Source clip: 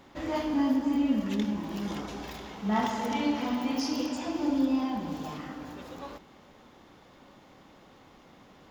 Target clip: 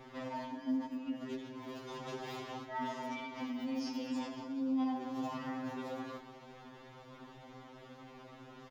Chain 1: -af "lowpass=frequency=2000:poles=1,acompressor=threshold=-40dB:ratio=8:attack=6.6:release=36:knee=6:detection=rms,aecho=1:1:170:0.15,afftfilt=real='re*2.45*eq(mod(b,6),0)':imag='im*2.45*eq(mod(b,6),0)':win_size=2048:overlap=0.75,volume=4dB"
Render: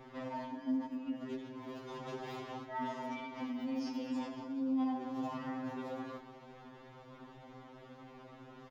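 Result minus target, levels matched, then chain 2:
4,000 Hz band −3.5 dB
-af "lowpass=frequency=4400:poles=1,acompressor=threshold=-40dB:ratio=8:attack=6.6:release=36:knee=6:detection=rms,aecho=1:1:170:0.15,afftfilt=real='re*2.45*eq(mod(b,6),0)':imag='im*2.45*eq(mod(b,6),0)':win_size=2048:overlap=0.75,volume=4dB"

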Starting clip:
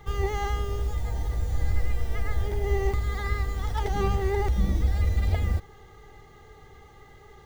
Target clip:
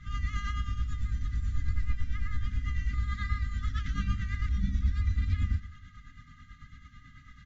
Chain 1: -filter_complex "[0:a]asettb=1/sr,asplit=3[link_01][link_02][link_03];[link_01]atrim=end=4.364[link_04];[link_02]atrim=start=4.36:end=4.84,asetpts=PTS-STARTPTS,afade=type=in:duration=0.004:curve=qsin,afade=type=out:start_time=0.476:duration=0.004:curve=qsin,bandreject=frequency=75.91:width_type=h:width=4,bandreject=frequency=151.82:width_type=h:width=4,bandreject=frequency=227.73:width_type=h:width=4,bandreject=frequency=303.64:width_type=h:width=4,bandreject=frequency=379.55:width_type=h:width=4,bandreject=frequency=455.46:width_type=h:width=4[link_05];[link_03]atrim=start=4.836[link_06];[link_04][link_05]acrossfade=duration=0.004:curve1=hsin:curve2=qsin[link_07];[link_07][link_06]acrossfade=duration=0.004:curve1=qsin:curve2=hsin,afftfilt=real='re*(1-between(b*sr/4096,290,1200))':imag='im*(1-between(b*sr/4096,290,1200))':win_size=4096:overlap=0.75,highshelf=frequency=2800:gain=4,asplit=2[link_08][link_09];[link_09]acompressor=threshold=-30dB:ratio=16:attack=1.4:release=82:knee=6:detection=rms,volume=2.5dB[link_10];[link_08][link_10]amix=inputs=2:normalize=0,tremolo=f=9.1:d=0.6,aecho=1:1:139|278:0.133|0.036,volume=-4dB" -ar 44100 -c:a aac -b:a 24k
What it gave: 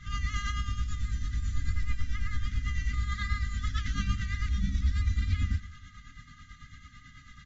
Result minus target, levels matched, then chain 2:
4,000 Hz band +6.0 dB
-filter_complex "[0:a]asettb=1/sr,asplit=3[link_01][link_02][link_03];[link_01]atrim=end=4.364[link_04];[link_02]atrim=start=4.36:end=4.84,asetpts=PTS-STARTPTS,afade=type=in:duration=0.004:curve=qsin,afade=type=out:start_time=0.476:duration=0.004:curve=qsin,bandreject=frequency=75.91:width_type=h:width=4,bandreject=frequency=151.82:width_type=h:width=4,bandreject=frequency=227.73:width_type=h:width=4,bandreject=frequency=303.64:width_type=h:width=4,bandreject=frequency=379.55:width_type=h:width=4,bandreject=frequency=455.46:width_type=h:width=4[link_05];[link_03]atrim=start=4.836[link_06];[link_04][link_05]acrossfade=duration=0.004:curve1=hsin:curve2=qsin[link_07];[link_07][link_06]acrossfade=duration=0.004:curve1=qsin:curve2=hsin,afftfilt=real='re*(1-between(b*sr/4096,290,1200))':imag='im*(1-between(b*sr/4096,290,1200))':win_size=4096:overlap=0.75,highshelf=frequency=2800:gain=-6.5,asplit=2[link_08][link_09];[link_09]acompressor=threshold=-30dB:ratio=16:attack=1.4:release=82:knee=6:detection=rms,volume=2.5dB[link_10];[link_08][link_10]amix=inputs=2:normalize=0,tremolo=f=9.1:d=0.6,aecho=1:1:139|278:0.133|0.036,volume=-4dB" -ar 44100 -c:a aac -b:a 24k

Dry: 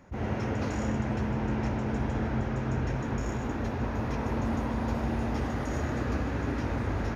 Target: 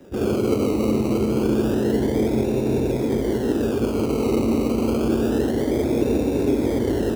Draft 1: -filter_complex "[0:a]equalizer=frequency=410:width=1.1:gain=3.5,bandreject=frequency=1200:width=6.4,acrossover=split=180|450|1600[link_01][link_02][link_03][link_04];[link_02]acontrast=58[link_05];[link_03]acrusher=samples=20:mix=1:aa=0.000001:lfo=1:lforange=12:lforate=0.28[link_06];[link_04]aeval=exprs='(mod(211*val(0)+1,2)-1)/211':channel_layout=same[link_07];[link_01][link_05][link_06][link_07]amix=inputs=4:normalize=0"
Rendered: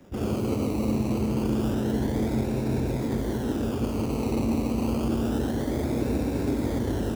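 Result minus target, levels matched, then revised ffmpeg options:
500 Hz band −3.5 dB
-filter_complex "[0:a]equalizer=frequency=410:width=1.1:gain=14,bandreject=frequency=1200:width=6.4,acrossover=split=180|450|1600[link_01][link_02][link_03][link_04];[link_02]acontrast=58[link_05];[link_03]acrusher=samples=20:mix=1:aa=0.000001:lfo=1:lforange=12:lforate=0.28[link_06];[link_04]aeval=exprs='(mod(211*val(0)+1,2)-1)/211':channel_layout=same[link_07];[link_01][link_05][link_06][link_07]amix=inputs=4:normalize=0"

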